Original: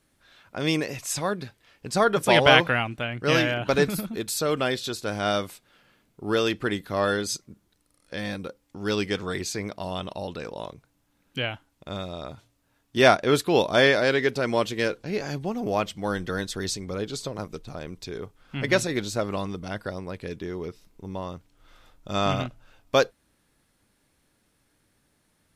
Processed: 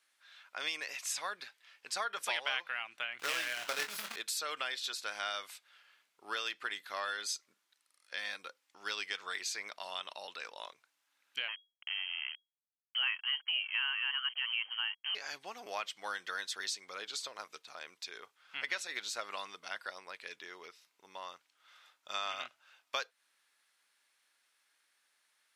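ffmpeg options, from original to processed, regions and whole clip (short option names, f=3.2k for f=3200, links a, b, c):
-filter_complex "[0:a]asettb=1/sr,asplit=3[a][b][c];[a]atrim=end=3.194[d];[b]atrim=start=3.19:end=4.16,asetpts=PTS-STARTPTS,afade=t=in:d=0.004:c=qsin,afade=t=out:st=0.966:d=0.004:c=qsin,equalizer=f=160:w=0.33:g=7,acrusher=bits=2:mode=log:mix=0:aa=0.000001,asplit=2[e][f];[f]adelay=24,volume=-7dB[g];[e][g]amix=inputs=2:normalize=0,atrim=end_sample=42777[h];[c]atrim=start=4.156[i];[d][h]acrossfade=d=0.004:c1=hsin:c2=qsin[j];[j][i]acrossfade=d=0.004:c1=qsin:c2=hsin,asettb=1/sr,asplit=3[k][l][m];[k]atrim=end=11.484[n];[l]atrim=start=11.48:end=15.15,asetpts=PTS-STARTPTS,afade=t=in:d=0.004:c=qsin,afade=t=out:st=3.666:d=0.004:c=qsin,acrusher=bits=5:mix=0:aa=0.5,lowpass=f=2.8k:t=q:w=0.5098,lowpass=f=2.8k:t=q:w=0.6013,lowpass=f=2.8k:t=q:w=0.9,lowpass=f=2.8k:t=q:w=2.563,afreqshift=-3300[o];[m]atrim=start=15.146[p];[n][o]acrossfade=d=0.004:c1=hsin:c2=qsin[q];[q][p]acrossfade=d=0.004:c1=qsin:c2=hsin,highpass=1.4k,highshelf=f=8.3k:g=-9.5,acompressor=threshold=-34dB:ratio=4"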